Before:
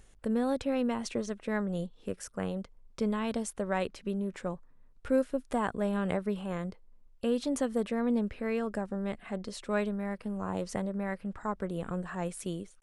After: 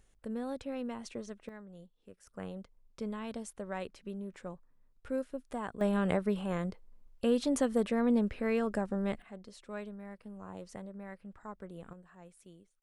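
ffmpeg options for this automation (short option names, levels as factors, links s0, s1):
-af "asetnsamples=n=441:p=0,asendcmd='1.49 volume volume -18dB;2.27 volume volume -8dB;5.81 volume volume 1dB;9.22 volume volume -11.5dB;11.93 volume volume -19.5dB',volume=0.376"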